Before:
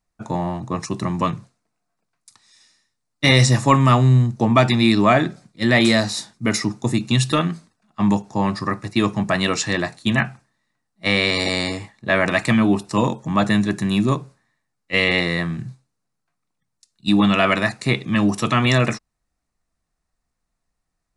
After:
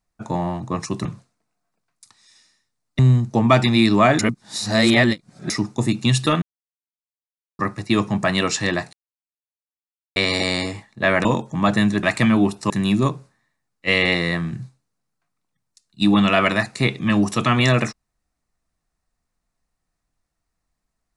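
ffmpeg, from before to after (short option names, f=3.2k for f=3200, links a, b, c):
-filter_complex "[0:a]asplit=12[a][b][c][d][e][f][g][h][i][j][k][l];[a]atrim=end=1.052[m];[b]atrim=start=1.298:end=3.242[n];[c]atrim=start=4.048:end=5.252[o];[d]atrim=start=5.248:end=6.562,asetpts=PTS-STARTPTS,areverse[p];[e]atrim=start=6.558:end=7.48,asetpts=PTS-STARTPTS,afade=t=out:st=0.918:d=0.004:c=hsin[q];[f]atrim=start=7.48:end=8.65,asetpts=PTS-STARTPTS,volume=0[r];[g]atrim=start=8.65:end=9.99,asetpts=PTS-STARTPTS,afade=t=in:d=0.004:c=hsin,afade=t=out:st=1.336:d=0.004:c=hsin[s];[h]atrim=start=9.99:end=11.22,asetpts=PTS-STARTPTS,volume=0[t];[i]atrim=start=11.22:end=12.312,asetpts=PTS-STARTPTS,afade=t=in:d=0.004:c=hsin[u];[j]atrim=start=12.978:end=13.762[v];[k]atrim=start=12.308:end=12.982[w];[l]atrim=start=13.758[x];[m][n]acrossfade=d=0.004:c1=hsin:c2=hsin[y];[y][o]acrossfade=d=0.004:c1=hsin:c2=hsin[z];[z][p]acrossfade=d=0.004:c1=hsin:c2=hsin[aa];[q][r][s][t][u]concat=n=5:v=0:a=1[ab];[aa][ab]acrossfade=d=0.004:c1=hsin:c2=hsin[ac];[ac][v]acrossfade=d=0.004:c1=hsin:c2=hsin[ad];[ad][w]acrossfade=d=0.004:c1=hsin:c2=hsin[ae];[ae][x]acrossfade=d=0.004:c1=hsin:c2=hsin"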